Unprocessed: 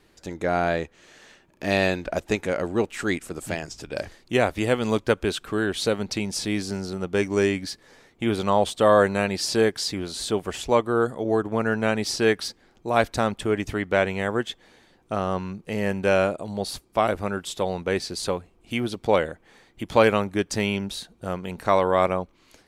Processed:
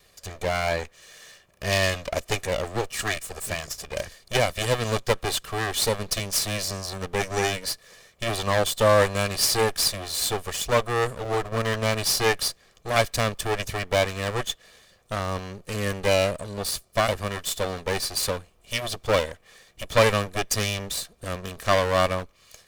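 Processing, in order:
lower of the sound and its delayed copy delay 1.7 ms
high-shelf EQ 2,800 Hz +9.5 dB

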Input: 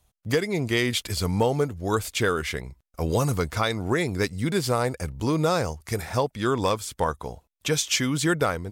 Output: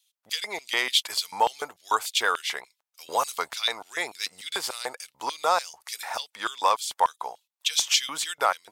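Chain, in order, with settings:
tape wow and flutter 25 cents
auto-filter high-pass square 3.4 Hz 860–3,400 Hz

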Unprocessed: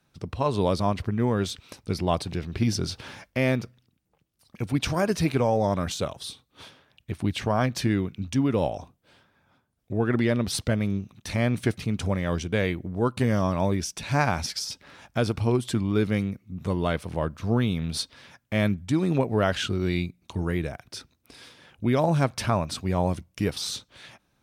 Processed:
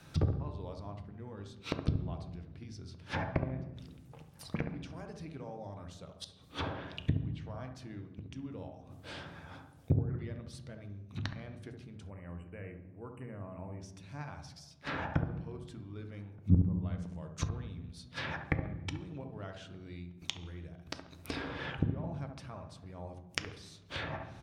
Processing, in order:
gate with flip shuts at −27 dBFS, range −36 dB
delay with a low-pass on its return 69 ms, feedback 30%, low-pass 1,400 Hz, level −6 dB
treble cut that deepens with the level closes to 1,100 Hz, closed at −43.5 dBFS
slap from a distant wall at 210 metres, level −28 dB
on a send at −8 dB: convolution reverb RT60 1.2 s, pre-delay 3 ms
0:12.10–0:13.81: on the sum: time-frequency box erased 3,000–7,400 Hz
0:16.98–0:17.49: parametric band 6,900 Hz +14 dB 0.91 octaves
level +12.5 dB

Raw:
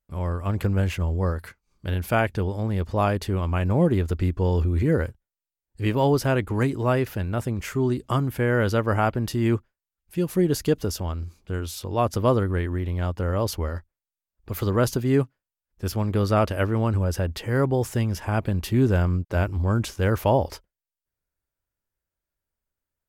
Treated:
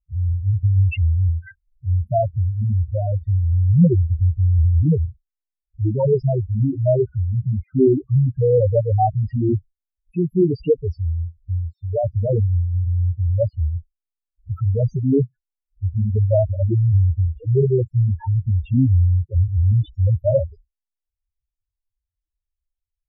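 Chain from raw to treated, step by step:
spectral peaks only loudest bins 2
auto-filter low-pass sine 0.22 Hz 350–3,000 Hz
level +8.5 dB

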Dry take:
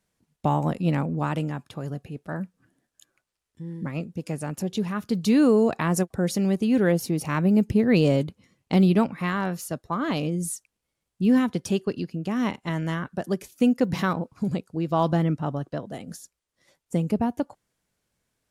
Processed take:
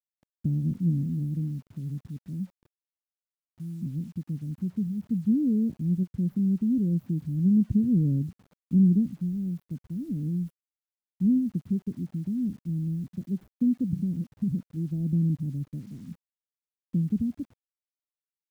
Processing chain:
inverse Chebyshev band-stop filter 1,000–8,900 Hz, stop band 70 dB
bit reduction 10 bits

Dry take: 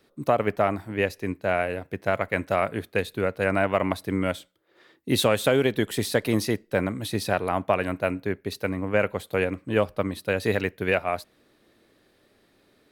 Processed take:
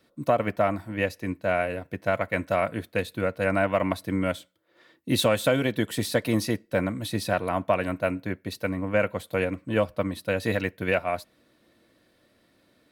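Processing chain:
notch comb filter 410 Hz

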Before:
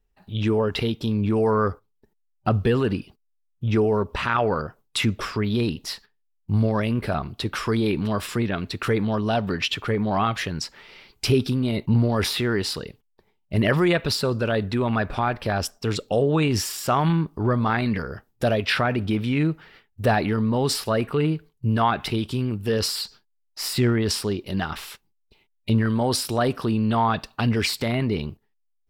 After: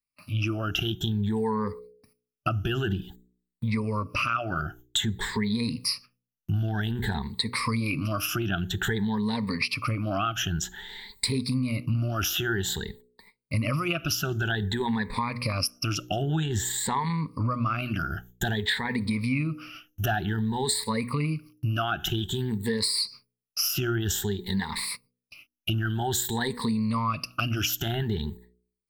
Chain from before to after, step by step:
rippled gain that drifts along the octave scale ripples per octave 0.95, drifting +0.52 Hz, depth 23 dB
high-shelf EQ 10,000 Hz +6.5 dB, from 0:16.46 −4.5 dB, from 0:17.75 +9.5 dB
noise gate with hold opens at −43 dBFS
parametric band 520 Hz −10.5 dB 1.3 octaves
hum removal 60.91 Hz, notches 8
downward compressor 4 to 1, threshold −25 dBFS, peak gain reduction 11.5 dB
one half of a high-frequency compander encoder only

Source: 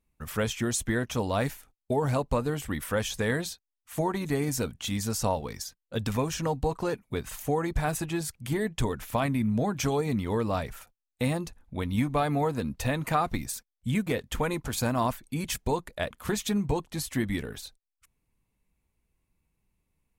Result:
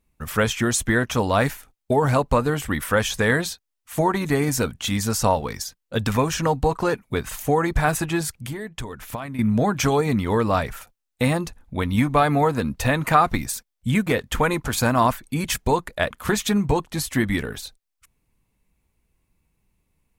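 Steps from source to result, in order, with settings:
dynamic equaliser 1,400 Hz, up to +5 dB, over −45 dBFS, Q 0.99
0:08.29–0:09.39: downward compressor 6 to 1, threshold −36 dBFS, peak gain reduction 14 dB
level +6.5 dB

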